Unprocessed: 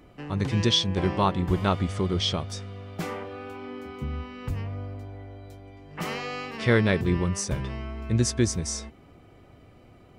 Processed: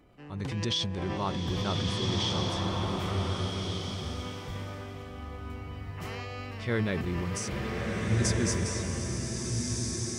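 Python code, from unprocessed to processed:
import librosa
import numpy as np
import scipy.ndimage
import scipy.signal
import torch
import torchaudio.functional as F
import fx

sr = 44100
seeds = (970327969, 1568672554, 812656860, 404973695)

y = fx.transient(x, sr, attack_db=-3, sustain_db=8)
y = fx.rev_bloom(y, sr, seeds[0], attack_ms=1600, drr_db=-1.5)
y = y * 10.0 ** (-8.0 / 20.0)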